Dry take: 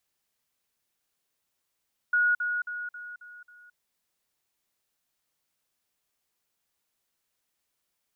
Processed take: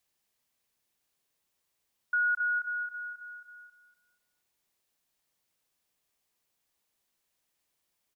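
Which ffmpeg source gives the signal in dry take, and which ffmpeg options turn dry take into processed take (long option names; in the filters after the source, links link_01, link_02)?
-f lavfi -i "aevalsrc='pow(10,(-20-6*floor(t/0.27))/20)*sin(2*PI*1450*t)*clip(min(mod(t,0.27),0.22-mod(t,0.27))/0.005,0,1)':duration=1.62:sample_rate=44100"
-filter_complex "[0:a]equalizer=frequency=1400:width=5.9:gain=-4,asplit=2[link_01][link_02];[link_02]adelay=242,lowpass=frequency=1400:poles=1,volume=-7.5dB,asplit=2[link_03][link_04];[link_04]adelay=242,lowpass=frequency=1400:poles=1,volume=0.36,asplit=2[link_05][link_06];[link_06]adelay=242,lowpass=frequency=1400:poles=1,volume=0.36,asplit=2[link_07][link_08];[link_08]adelay=242,lowpass=frequency=1400:poles=1,volume=0.36[link_09];[link_03][link_05][link_07][link_09]amix=inputs=4:normalize=0[link_10];[link_01][link_10]amix=inputs=2:normalize=0"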